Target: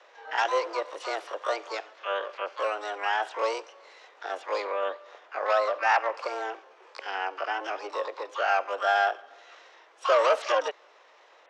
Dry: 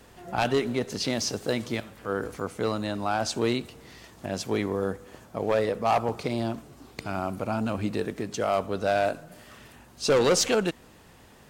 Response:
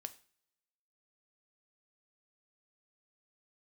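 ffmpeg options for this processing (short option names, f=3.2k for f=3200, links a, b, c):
-filter_complex "[0:a]highpass=f=380:t=q:w=0.5412,highpass=f=380:t=q:w=1.307,lowpass=f=3.1k:t=q:w=0.5176,lowpass=f=3.1k:t=q:w=0.7071,lowpass=f=3.1k:t=q:w=1.932,afreqshift=99,highshelf=f=2.2k:g=-5,asplit=2[a][b];[b]asetrate=88200,aresample=44100,atempo=0.5,volume=-4dB[c];[a][c]amix=inputs=2:normalize=0"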